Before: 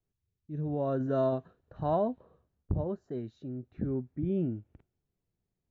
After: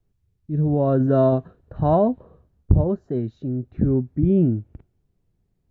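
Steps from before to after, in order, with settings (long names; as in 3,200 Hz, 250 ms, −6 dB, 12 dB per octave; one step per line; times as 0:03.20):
spectral tilt −2 dB per octave
level +8.5 dB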